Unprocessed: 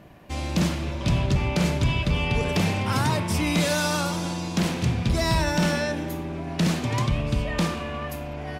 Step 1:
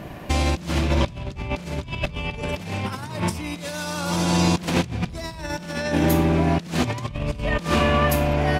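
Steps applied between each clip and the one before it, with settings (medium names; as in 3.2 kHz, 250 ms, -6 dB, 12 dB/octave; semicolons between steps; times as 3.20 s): compressor with a negative ratio -30 dBFS, ratio -0.5; trim +7 dB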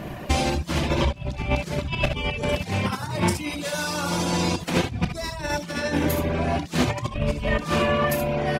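early reflections 32 ms -11 dB, 63 ms -7.5 dB, 77 ms -7 dB; reverb removal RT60 0.64 s; gain riding within 3 dB 0.5 s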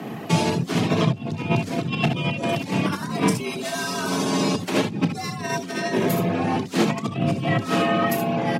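octave divider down 1 oct, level -1 dB; frequency shift +95 Hz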